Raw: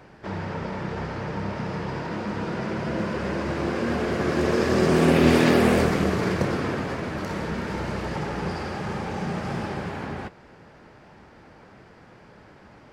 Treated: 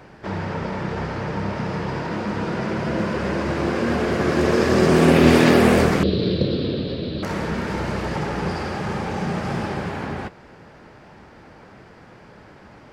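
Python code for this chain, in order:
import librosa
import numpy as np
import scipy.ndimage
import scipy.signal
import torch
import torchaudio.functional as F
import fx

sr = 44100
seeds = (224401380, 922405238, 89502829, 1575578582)

y = fx.curve_eq(x, sr, hz=(530.0, 810.0, 2100.0, 4000.0, 6600.0), db=(0, -19, -14, 12, -28), at=(6.03, 7.23))
y = y * librosa.db_to_amplitude(4.0)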